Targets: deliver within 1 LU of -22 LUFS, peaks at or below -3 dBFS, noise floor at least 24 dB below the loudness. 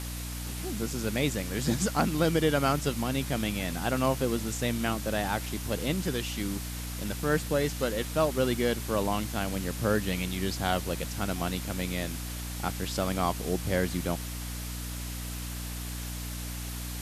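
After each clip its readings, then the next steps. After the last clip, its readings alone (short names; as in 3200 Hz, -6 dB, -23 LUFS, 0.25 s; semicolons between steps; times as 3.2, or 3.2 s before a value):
hum 60 Hz; harmonics up to 300 Hz; hum level -35 dBFS; noise floor -37 dBFS; noise floor target -55 dBFS; loudness -30.5 LUFS; peak -12.5 dBFS; loudness target -22.0 LUFS
-> de-hum 60 Hz, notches 5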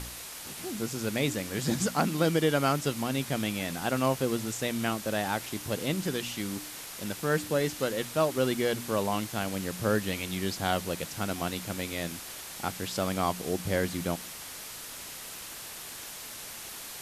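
hum none; noise floor -42 dBFS; noise floor target -55 dBFS
-> denoiser 13 dB, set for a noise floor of -42 dBFS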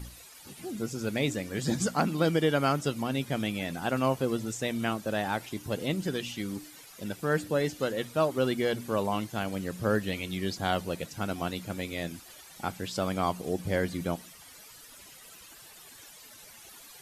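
noise floor -51 dBFS; noise floor target -55 dBFS
-> denoiser 6 dB, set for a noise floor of -51 dBFS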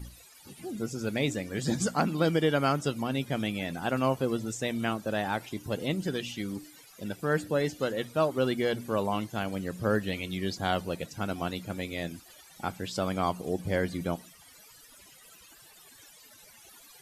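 noise floor -55 dBFS; loudness -31.0 LUFS; peak -13.0 dBFS; loudness target -22.0 LUFS
-> gain +9 dB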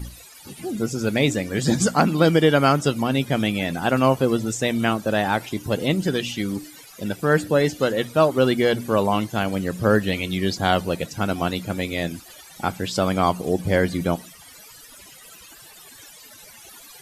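loudness -22.0 LUFS; peak -4.0 dBFS; noise floor -46 dBFS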